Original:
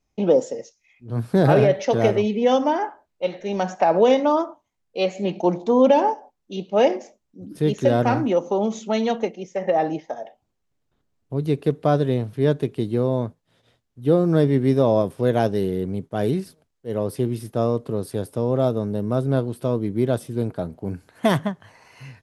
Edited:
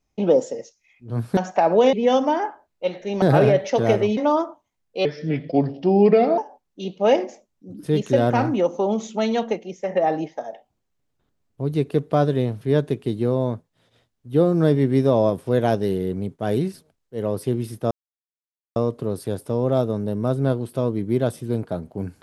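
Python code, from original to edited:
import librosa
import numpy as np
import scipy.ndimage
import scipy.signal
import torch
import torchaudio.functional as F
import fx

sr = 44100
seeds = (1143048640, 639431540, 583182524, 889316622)

y = fx.edit(x, sr, fx.swap(start_s=1.37, length_s=0.95, other_s=3.61, other_length_s=0.56),
    fx.speed_span(start_s=5.05, length_s=1.05, speed=0.79),
    fx.insert_silence(at_s=17.63, length_s=0.85), tone=tone)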